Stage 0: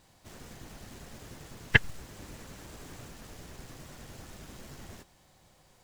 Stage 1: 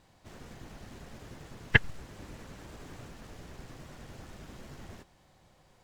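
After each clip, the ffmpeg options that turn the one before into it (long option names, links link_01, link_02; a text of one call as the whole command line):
ffmpeg -i in.wav -af "aemphasis=mode=reproduction:type=cd" out.wav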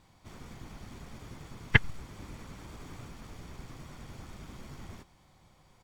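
ffmpeg -i in.wav -af "aecho=1:1:0.9:0.31" out.wav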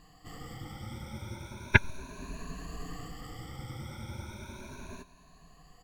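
ffmpeg -i in.wav -af "afftfilt=real='re*pow(10,20/40*sin(2*PI*(1.5*log(max(b,1)*sr/1024/100)/log(2)-(0.35)*(pts-256)/sr)))':imag='im*pow(10,20/40*sin(2*PI*(1.5*log(max(b,1)*sr/1024/100)/log(2)-(0.35)*(pts-256)/sr)))':win_size=1024:overlap=0.75" out.wav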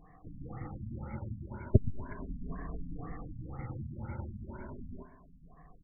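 ffmpeg -i in.wav -filter_complex "[0:a]asplit=2[link_01][link_02];[link_02]adelay=122,lowpass=frequency=3700:poles=1,volume=-14dB,asplit=2[link_03][link_04];[link_04]adelay=122,lowpass=frequency=3700:poles=1,volume=0.38,asplit=2[link_05][link_06];[link_06]adelay=122,lowpass=frequency=3700:poles=1,volume=0.38,asplit=2[link_07][link_08];[link_08]adelay=122,lowpass=frequency=3700:poles=1,volume=0.38[link_09];[link_01][link_03][link_05][link_07][link_09]amix=inputs=5:normalize=0,afftfilt=real='re*lt(b*sr/1024,260*pow(2300/260,0.5+0.5*sin(2*PI*2*pts/sr)))':imag='im*lt(b*sr/1024,260*pow(2300/260,0.5+0.5*sin(2*PI*2*pts/sr)))':win_size=1024:overlap=0.75,volume=1.5dB" out.wav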